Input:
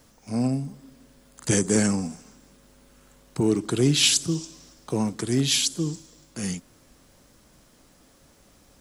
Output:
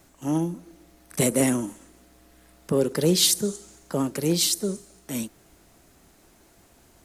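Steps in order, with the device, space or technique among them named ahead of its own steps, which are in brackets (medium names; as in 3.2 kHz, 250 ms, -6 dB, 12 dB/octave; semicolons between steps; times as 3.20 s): nightcore (tape speed +25%)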